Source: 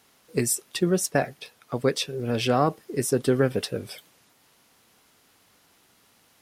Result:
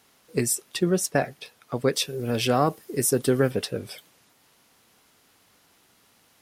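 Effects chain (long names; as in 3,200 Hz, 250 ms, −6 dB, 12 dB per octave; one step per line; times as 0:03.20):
0:01.93–0:03.51: high-shelf EQ 8,200 Hz +10.5 dB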